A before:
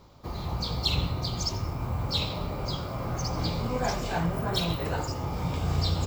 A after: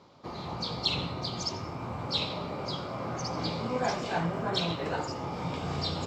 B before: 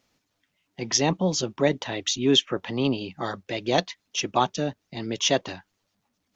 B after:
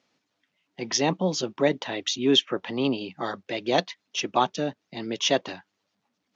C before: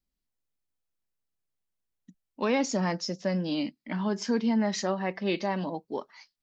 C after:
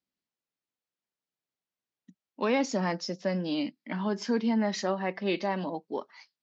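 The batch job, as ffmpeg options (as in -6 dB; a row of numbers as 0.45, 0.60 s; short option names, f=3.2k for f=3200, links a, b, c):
-af "highpass=170,lowpass=5.6k"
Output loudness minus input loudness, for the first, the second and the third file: -2.5, -1.0, -1.0 LU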